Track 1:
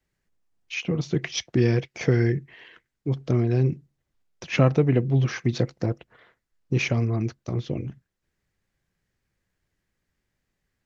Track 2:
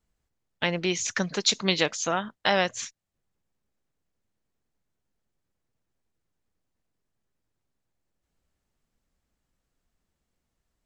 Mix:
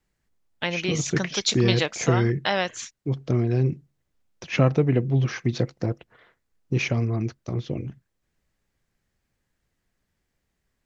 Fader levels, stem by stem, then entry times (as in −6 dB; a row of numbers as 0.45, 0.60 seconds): −0.5, −1.0 decibels; 0.00, 0.00 seconds